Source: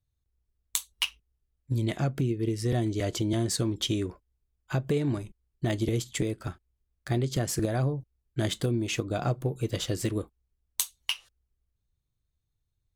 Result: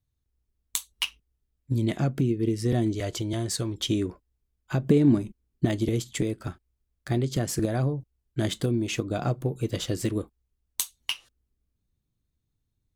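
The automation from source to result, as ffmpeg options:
ffmpeg -i in.wav -af "asetnsamples=nb_out_samples=441:pad=0,asendcmd='2.95 equalizer g -4;3.88 equalizer g 5;4.82 equalizer g 13;5.65 equalizer g 3.5;10.99 equalizer g 11',equalizer=frequency=240:width_type=o:width=1.3:gain=5.5" out.wav

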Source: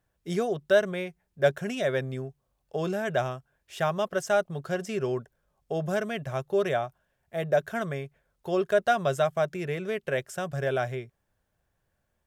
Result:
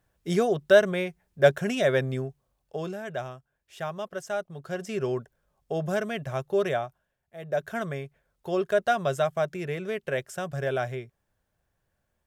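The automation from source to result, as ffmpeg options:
ffmpeg -i in.wav -af "volume=22dB,afade=type=out:start_time=2.17:duration=0.8:silence=0.298538,afade=type=in:start_time=4.55:duration=0.47:silence=0.446684,afade=type=out:start_time=6.65:duration=0.73:silence=0.251189,afade=type=in:start_time=7.38:duration=0.33:silence=0.281838" out.wav

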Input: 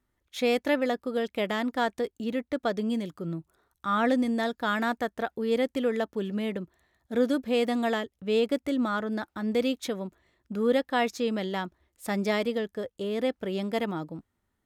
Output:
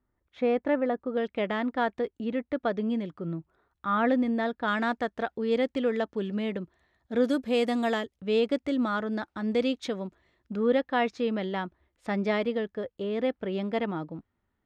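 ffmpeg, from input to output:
ffmpeg -i in.wav -af "asetnsamples=nb_out_samples=441:pad=0,asendcmd='1.17 lowpass f 2700;4.68 lowpass f 4800;7.24 lowpass f 9600;8.16 lowpass f 5400;10.56 lowpass f 3100',lowpass=1500" out.wav

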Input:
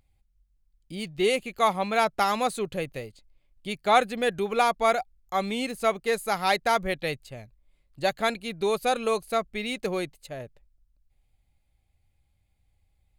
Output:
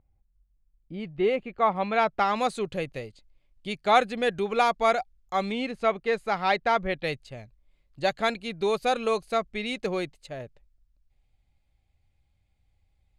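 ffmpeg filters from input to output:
ffmpeg -i in.wav -af "asetnsamples=nb_out_samples=441:pad=0,asendcmd='0.94 lowpass f 1800;1.76 lowpass f 3200;2.36 lowpass f 6800;5.52 lowpass f 3400;7.04 lowpass f 6600',lowpass=1100" out.wav

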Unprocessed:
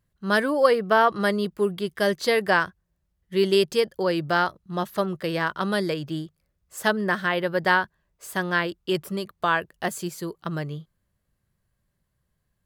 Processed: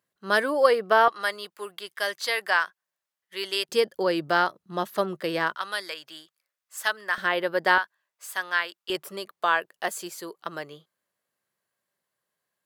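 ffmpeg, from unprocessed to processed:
ffmpeg -i in.wav -af "asetnsamples=nb_out_samples=441:pad=0,asendcmd='1.08 highpass f 920;3.69 highpass f 250;5.55 highpass f 1100;7.18 highpass f 340;7.78 highpass f 980;8.9 highpass f 470',highpass=360" out.wav

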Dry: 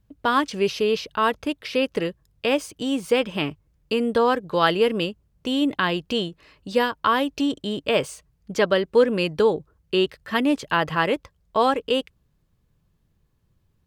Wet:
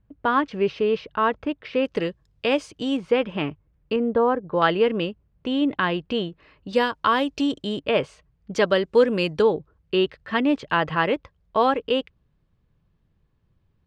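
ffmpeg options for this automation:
ffmpeg -i in.wav -af "asetnsamples=nb_out_samples=441:pad=0,asendcmd='1.85 lowpass f 5200;2.97 lowpass f 2500;3.96 lowpass f 1200;4.62 lowpass f 2800;6.73 lowpass f 7000;7.79 lowpass f 3100;8.54 lowpass f 7400;9.42 lowpass f 3500',lowpass=2200" out.wav

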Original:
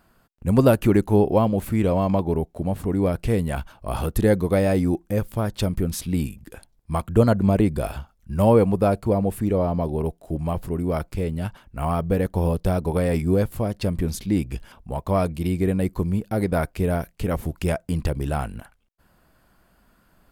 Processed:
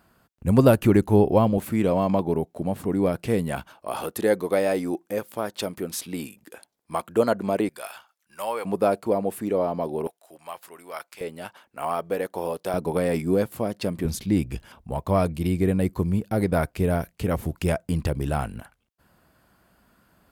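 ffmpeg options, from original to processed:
ffmpeg -i in.wav -af "asetnsamples=nb_out_samples=441:pad=0,asendcmd='1.58 highpass f 150;3.73 highpass f 340;7.69 highpass f 1100;8.65 highpass f 280;10.07 highpass f 1100;11.21 highpass f 430;12.74 highpass f 190;14.05 highpass f 63',highpass=54" out.wav

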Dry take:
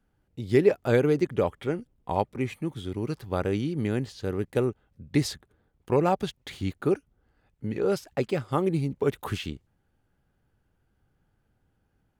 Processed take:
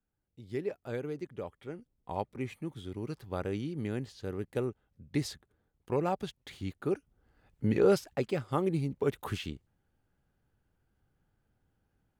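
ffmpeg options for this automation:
ffmpeg -i in.wav -af "volume=3.5dB,afade=type=in:start_time=1.59:duration=0.78:silence=0.421697,afade=type=in:start_time=6.88:duration=0.85:silence=0.281838,afade=type=out:start_time=7.73:duration=0.45:silence=0.398107" out.wav

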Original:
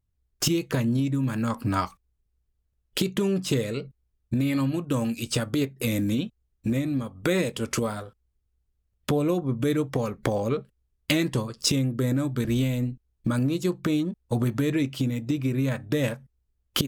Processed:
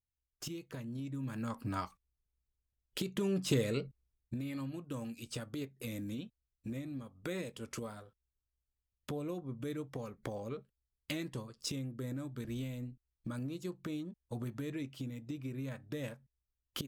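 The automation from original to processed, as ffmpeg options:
ffmpeg -i in.wav -af "volume=-4dB,afade=type=in:start_time=0.87:duration=0.54:silence=0.446684,afade=type=in:start_time=3.06:duration=0.69:silence=0.398107,afade=type=out:start_time=3.75:duration=0.65:silence=0.266073" out.wav

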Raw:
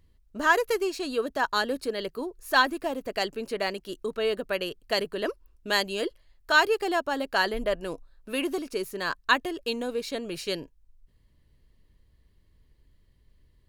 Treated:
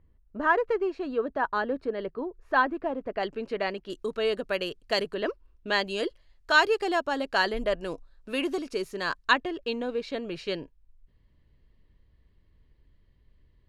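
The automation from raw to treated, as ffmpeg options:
ffmpeg -i in.wav -af "asetnsamples=nb_out_samples=441:pad=0,asendcmd='3.23 lowpass f 3000;3.9 lowpass f 7700;5.14 lowpass f 3700;5.87 lowpass f 7200;9.33 lowpass f 3400',lowpass=1600" out.wav

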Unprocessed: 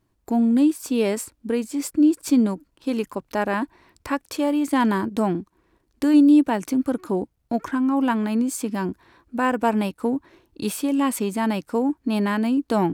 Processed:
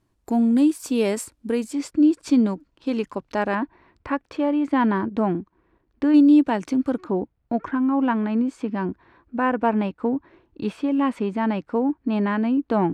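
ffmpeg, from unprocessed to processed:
ffmpeg -i in.wav -af "asetnsamples=nb_out_samples=441:pad=0,asendcmd='1.73 lowpass f 5200;3.55 lowpass f 2400;6.14 lowpass f 5200;7.04 lowpass f 2400',lowpass=12000" out.wav

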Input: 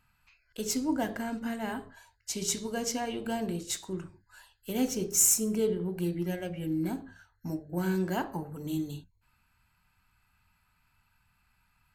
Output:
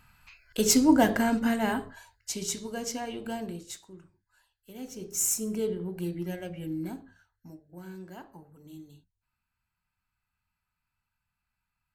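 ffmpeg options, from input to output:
ffmpeg -i in.wav -af "volume=20.5dB,afade=type=out:start_time=1.24:duration=1.25:silence=0.266073,afade=type=out:start_time=3.32:duration=0.6:silence=0.281838,afade=type=in:start_time=4.81:duration=0.68:silence=0.281838,afade=type=out:start_time=6.6:duration=0.97:silence=0.251189" out.wav

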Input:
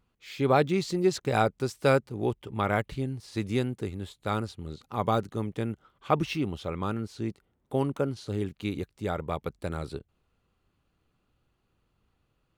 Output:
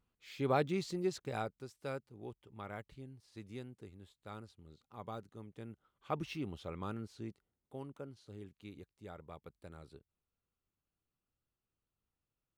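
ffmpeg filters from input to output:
ffmpeg -i in.wav -af "volume=-0.5dB,afade=type=out:start_time=0.82:duration=0.84:silence=0.316228,afade=type=in:start_time=5.49:duration=1.02:silence=0.375837,afade=type=out:start_time=7.04:duration=0.7:silence=0.375837" out.wav

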